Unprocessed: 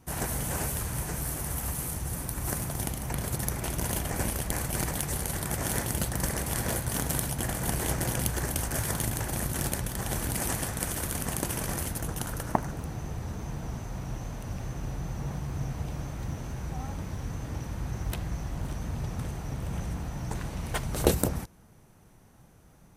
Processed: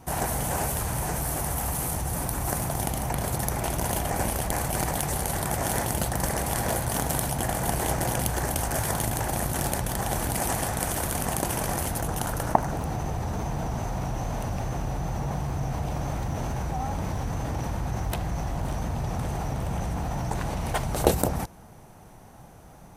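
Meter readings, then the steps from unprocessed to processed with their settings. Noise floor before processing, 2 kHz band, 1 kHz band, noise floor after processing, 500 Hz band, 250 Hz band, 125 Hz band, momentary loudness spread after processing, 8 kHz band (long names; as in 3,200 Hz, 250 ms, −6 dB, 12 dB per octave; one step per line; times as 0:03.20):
−56 dBFS, +3.5 dB, +8.5 dB, −48 dBFS, +5.5 dB, +3.0 dB, +3.0 dB, 5 LU, +2.5 dB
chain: parametric band 760 Hz +8 dB 0.89 octaves
in parallel at −3 dB: compressor whose output falls as the input rises −36 dBFS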